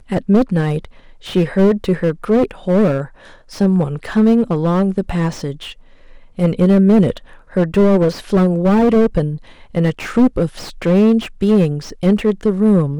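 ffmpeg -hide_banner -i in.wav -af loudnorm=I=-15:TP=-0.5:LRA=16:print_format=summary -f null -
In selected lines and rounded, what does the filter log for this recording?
Input Integrated:    -15.6 LUFS
Input True Peak:      -1.7 dBTP
Input LRA:             2.0 LU
Input Threshold:     -26.1 LUFS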